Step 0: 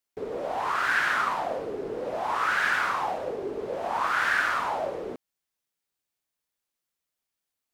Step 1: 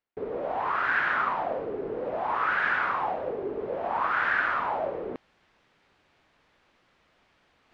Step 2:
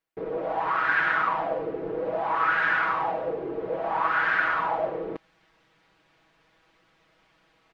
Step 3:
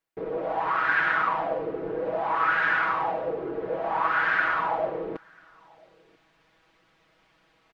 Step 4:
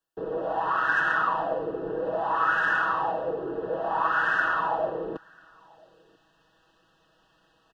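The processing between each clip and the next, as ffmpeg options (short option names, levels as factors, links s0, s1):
-af "areverse,acompressor=mode=upward:threshold=0.02:ratio=2.5,areverse,lowpass=2800,aemphasis=mode=reproduction:type=cd"
-af "aecho=1:1:6.2:0.79"
-filter_complex "[0:a]asplit=2[s0][s1];[s1]adelay=991.3,volume=0.0447,highshelf=f=4000:g=-22.3[s2];[s0][s2]amix=inputs=2:normalize=0"
-filter_complex "[0:a]acrossover=split=120|370|2300[s0][s1][s2][s3];[s3]asoftclip=type=tanh:threshold=0.02[s4];[s0][s1][s2][s4]amix=inputs=4:normalize=0,asuperstop=centerf=2200:order=20:qfactor=3.3"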